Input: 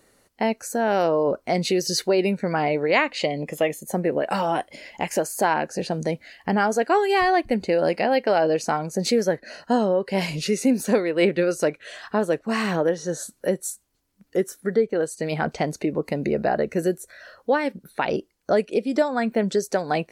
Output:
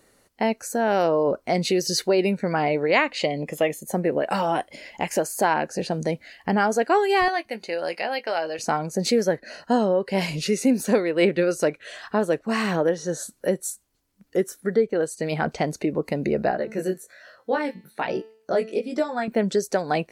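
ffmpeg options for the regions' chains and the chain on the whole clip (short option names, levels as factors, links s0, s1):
-filter_complex "[0:a]asettb=1/sr,asplit=3[s0][s1][s2];[s0]atrim=end=7.284[s3];[s1]atrim=start=7.28:end=8.59,asetpts=PTS-STARTPTS,afade=t=in:d=0.004:c=qsin,afade=t=out:st=1.306:d=0.004:c=qsin,highpass=f=1200:p=1,bandreject=f=7700:w=7.3,asplit=2[s4][s5];[s5]adelay=18,volume=0.251[s6];[s4][s6]amix=inputs=2:normalize=0,atrim=end_sample=57771[s7];[s2]atrim=start=8.586[s8];[s3][s7]acrossfade=d=0.004:c1=hsin:c2=qsin[s9];[s9][s8]acrossfade=d=0.004:c1=qsin:c2=hsin,asettb=1/sr,asplit=3[s10][s11][s12];[s10]atrim=end=16.514[s13];[s11]atrim=start=16.51:end=19.28,asetpts=PTS-STARTPTS,afade=t=in:d=0.004:c=qsin,afade=t=out:st=2.766:d=0.004:c=qsin,flanger=delay=16:depth=5.1:speed=1.2,highpass=100,bandreject=f=220.6:t=h:w=4,bandreject=f=441.2:t=h:w=4,bandreject=f=661.8:t=h:w=4,bandreject=f=882.4:t=h:w=4,bandreject=f=1103:t=h:w=4,bandreject=f=1323.6:t=h:w=4,bandreject=f=1544.2:t=h:w=4,bandreject=f=1764.8:t=h:w=4,bandreject=f=1985.4:t=h:w=4,bandreject=f=2206:t=h:w=4,bandreject=f=2426.6:t=h:w=4,bandreject=f=2647.2:t=h:w=4,bandreject=f=2867.8:t=h:w=4,bandreject=f=3088.4:t=h:w=4,bandreject=f=3309:t=h:w=4,bandreject=f=3529.6:t=h:w=4,bandreject=f=3750.2:t=h:w=4,bandreject=f=3970.8:t=h:w=4,bandreject=f=4191.4:t=h:w=4,bandreject=f=4412:t=h:w=4,bandreject=f=4632.6:t=h:w=4,bandreject=f=4853.2:t=h:w=4,bandreject=f=5073.8:t=h:w=4,bandreject=f=5294.4:t=h:w=4,bandreject=f=5515:t=h:w=4,bandreject=f=5735.6:t=h:w=4,bandreject=f=5956.2:t=h:w=4,bandreject=f=6176.8:t=h:w=4,bandreject=f=6397.4:t=h:w=4,bandreject=f=6618:t=h:w=4,bandreject=f=6838.6:t=h:w=4,bandreject=f=7059.2:t=h:w=4,bandreject=f=7279.8:t=h:w=4,bandreject=f=7500.4:t=h:w=4,bandreject=f=7721:t=h:w=4[s14];[s12]atrim=start=19.276[s15];[s13][s14]acrossfade=d=0.004:c1=hsin:c2=qsin[s16];[s16][s15]acrossfade=d=0.004:c1=qsin:c2=hsin"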